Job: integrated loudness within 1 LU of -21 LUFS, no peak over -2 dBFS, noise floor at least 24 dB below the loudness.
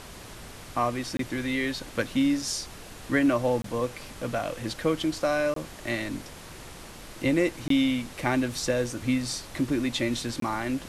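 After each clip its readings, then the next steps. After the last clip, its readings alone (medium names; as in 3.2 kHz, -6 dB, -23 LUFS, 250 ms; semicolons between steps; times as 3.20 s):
dropouts 5; longest dropout 23 ms; noise floor -45 dBFS; noise floor target -52 dBFS; loudness -28.0 LUFS; peak level -11.0 dBFS; loudness target -21.0 LUFS
-> interpolate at 1.17/3.62/5.54/7.68/10.40 s, 23 ms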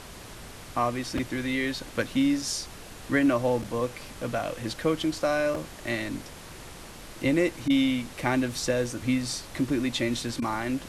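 dropouts 0; noise floor -44 dBFS; noise floor target -52 dBFS
-> noise print and reduce 8 dB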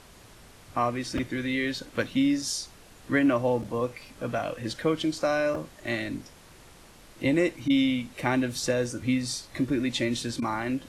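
noise floor -52 dBFS; loudness -28.0 LUFS; peak level -11.0 dBFS; loudness target -21.0 LUFS
-> trim +7 dB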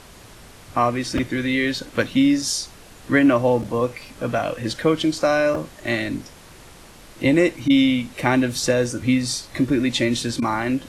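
loudness -21.0 LUFS; peak level -4.0 dBFS; noise floor -45 dBFS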